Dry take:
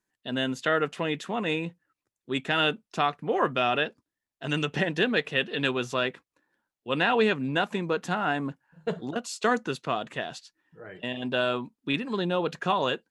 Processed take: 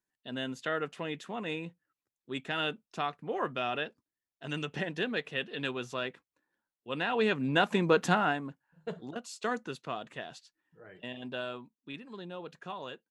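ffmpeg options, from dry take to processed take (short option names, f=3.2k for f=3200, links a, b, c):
-af "volume=4dB,afade=t=in:st=7.1:d=0.95:silence=0.251189,afade=t=out:st=8.05:d=0.36:silence=0.237137,afade=t=out:st=11.1:d=0.66:silence=0.446684"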